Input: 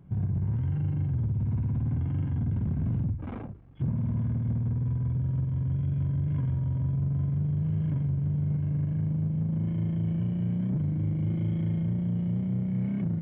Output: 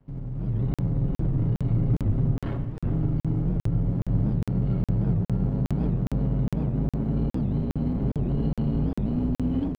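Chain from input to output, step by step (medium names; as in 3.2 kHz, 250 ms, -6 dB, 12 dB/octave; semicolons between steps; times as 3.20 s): octave divider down 2 oct, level +2 dB; speed mistake 33 rpm record played at 45 rpm; comb 7.3 ms, depth 51%; spring tank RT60 1.5 s, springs 32/49/54 ms, chirp 50 ms, DRR 9 dB; peak limiter -21.5 dBFS, peak gain reduction 9 dB; level rider gain up to 10 dB; crossover distortion -52.5 dBFS; peaking EQ 110 Hz +10 dB 0.26 oct; delay 388 ms -8.5 dB; crackling interface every 0.41 s, samples 2048, zero, from 0.74 s; warped record 78 rpm, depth 250 cents; trim -8 dB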